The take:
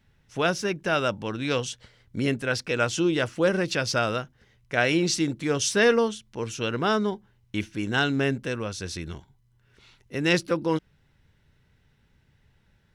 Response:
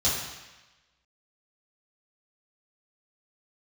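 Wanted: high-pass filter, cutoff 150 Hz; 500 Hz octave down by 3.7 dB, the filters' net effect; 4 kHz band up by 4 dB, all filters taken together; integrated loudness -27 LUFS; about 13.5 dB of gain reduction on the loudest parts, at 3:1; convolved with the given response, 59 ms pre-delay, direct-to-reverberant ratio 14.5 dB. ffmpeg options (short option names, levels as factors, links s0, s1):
-filter_complex "[0:a]highpass=150,equalizer=f=500:t=o:g=-4.5,equalizer=f=4000:t=o:g=5.5,acompressor=threshold=0.0158:ratio=3,asplit=2[s0][s1];[1:a]atrim=start_sample=2205,adelay=59[s2];[s1][s2]afir=irnorm=-1:irlink=0,volume=0.0501[s3];[s0][s3]amix=inputs=2:normalize=0,volume=2.99"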